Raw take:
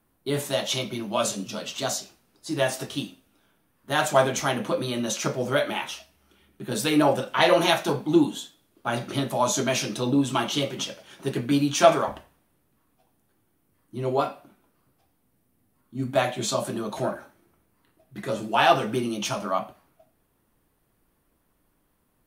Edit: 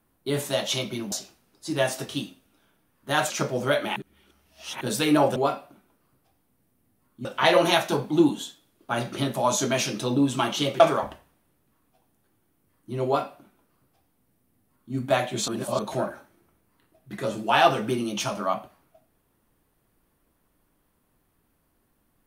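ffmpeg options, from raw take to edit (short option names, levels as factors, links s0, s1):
-filter_complex "[0:a]asplit=10[s0][s1][s2][s3][s4][s5][s6][s7][s8][s9];[s0]atrim=end=1.122[s10];[s1]atrim=start=1.928:end=4.112[s11];[s2]atrim=start=5.148:end=5.812[s12];[s3]atrim=start=5.808:end=6.662,asetpts=PTS-STARTPTS,areverse[s13];[s4]atrim=start=6.658:end=7.212[s14];[s5]atrim=start=14.098:end=15.992[s15];[s6]atrim=start=7.208:end=10.762[s16];[s7]atrim=start=11.848:end=16.532[s17];[s8]atrim=start=16.528:end=16.842,asetpts=PTS-STARTPTS,areverse[s18];[s9]atrim=start=16.838[s19];[s10][s11]acrossfade=d=0.004:c1=hsin:c2=hsin[s20];[s20][s12]acrossfade=d=0.004:c1=hsin:c2=hsin[s21];[s21][s13]acrossfade=d=0.004:c1=hsin:c2=hsin[s22];[s22][s14]acrossfade=d=0.004:c1=hsin:c2=hsin[s23];[s23][s15]acrossfade=d=0.004:c1=hsin:c2=hsin[s24];[s24][s16]acrossfade=d=0.004:c1=hsin:c2=hsin[s25];[s25][s17]acrossfade=d=0.004:c1=hsin:c2=hsin[s26];[s26][s18]acrossfade=d=0.004:c1=hsin:c2=hsin[s27];[s27][s19]acrossfade=d=0.004:c1=hsin:c2=hsin"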